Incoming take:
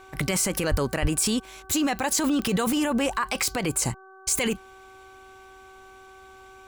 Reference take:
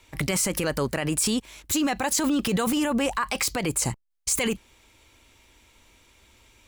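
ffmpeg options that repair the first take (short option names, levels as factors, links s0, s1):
-filter_complex "[0:a]adeclick=t=4,bandreject=f=381.3:t=h:w=4,bandreject=f=762.6:t=h:w=4,bandreject=f=1143.9:t=h:w=4,bandreject=f=1525.2:t=h:w=4,asplit=3[s0][s1][s2];[s0]afade=t=out:st=0.7:d=0.02[s3];[s1]highpass=f=140:w=0.5412,highpass=f=140:w=1.3066,afade=t=in:st=0.7:d=0.02,afade=t=out:st=0.82:d=0.02[s4];[s2]afade=t=in:st=0.82:d=0.02[s5];[s3][s4][s5]amix=inputs=3:normalize=0,asplit=3[s6][s7][s8];[s6]afade=t=out:st=1.01:d=0.02[s9];[s7]highpass=f=140:w=0.5412,highpass=f=140:w=1.3066,afade=t=in:st=1.01:d=0.02,afade=t=out:st=1.13:d=0.02[s10];[s8]afade=t=in:st=1.13:d=0.02[s11];[s9][s10][s11]amix=inputs=3:normalize=0"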